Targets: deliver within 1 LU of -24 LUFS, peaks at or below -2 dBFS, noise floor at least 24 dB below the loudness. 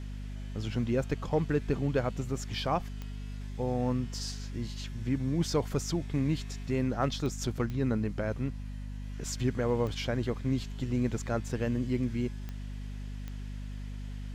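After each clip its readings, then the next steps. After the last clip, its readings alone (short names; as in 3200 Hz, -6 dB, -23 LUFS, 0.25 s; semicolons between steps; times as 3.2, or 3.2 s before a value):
clicks 6; hum 50 Hz; harmonics up to 250 Hz; hum level -36 dBFS; loudness -33.0 LUFS; peak -16.5 dBFS; loudness target -24.0 LUFS
-> de-click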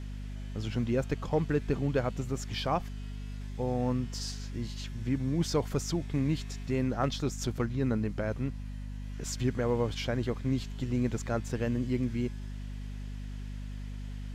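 clicks 0; hum 50 Hz; harmonics up to 250 Hz; hum level -36 dBFS
-> de-hum 50 Hz, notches 5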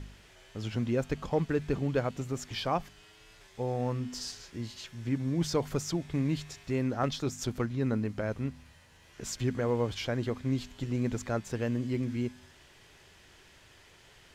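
hum none; loudness -33.0 LUFS; peak -17.5 dBFS; loudness target -24.0 LUFS
-> gain +9 dB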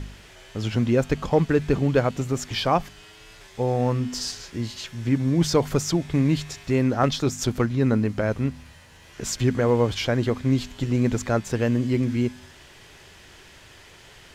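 loudness -24.0 LUFS; peak -8.5 dBFS; noise floor -49 dBFS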